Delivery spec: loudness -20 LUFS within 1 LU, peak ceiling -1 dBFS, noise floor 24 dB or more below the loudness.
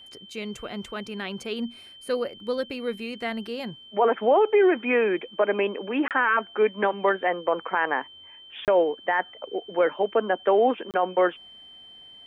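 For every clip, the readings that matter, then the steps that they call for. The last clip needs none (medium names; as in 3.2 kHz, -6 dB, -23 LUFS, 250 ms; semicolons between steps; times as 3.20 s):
dropouts 3; longest dropout 28 ms; steady tone 3.1 kHz; tone level -45 dBFS; loudness -25.0 LUFS; peak level -11.5 dBFS; loudness target -20.0 LUFS
-> interpolate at 6.08/8.65/10.91 s, 28 ms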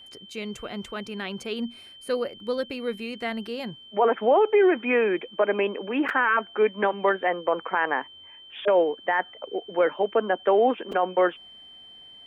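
dropouts 0; steady tone 3.1 kHz; tone level -45 dBFS
-> band-stop 3.1 kHz, Q 30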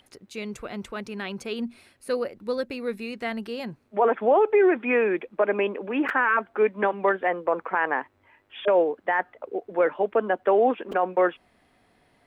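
steady tone not found; loudness -25.0 LUFS; peak level -11.5 dBFS; loudness target -20.0 LUFS
-> trim +5 dB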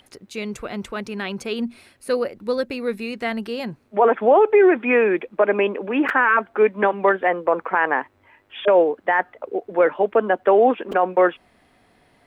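loudness -20.0 LUFS; peak level -6.5 dBFS; noise floor -60 dBFS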